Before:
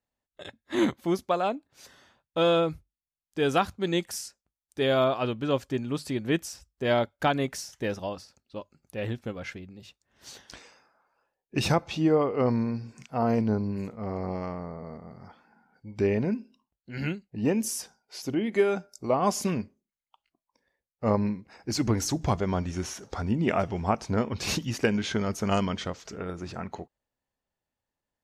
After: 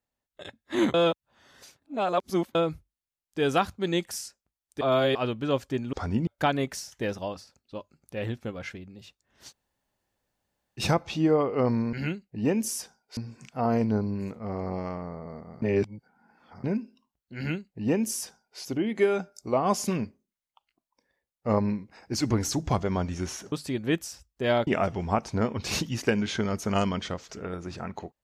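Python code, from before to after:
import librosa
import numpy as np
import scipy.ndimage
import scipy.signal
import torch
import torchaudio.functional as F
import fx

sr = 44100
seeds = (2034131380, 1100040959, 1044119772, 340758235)

y = fx.edit(x, sr, fx.reverse_span(start_s=0.94, length_s=1.61),
    fx.reverse_span(start_s=4.81, length_s=0.34),
    fx.swap(start_s=5.93, length_s=1.15, other_s=23.09, other_length_s=0.34),
    fx.room_tone_fill(start_s=10.31, length_s=1.3, crossfade_s=0.06),
    fx.reverse_span(start_s=15.19, length_s=1.02),
    fx.duplicate(start_s=16.93, length_s=1.24, to_s=12.74), tone=tone)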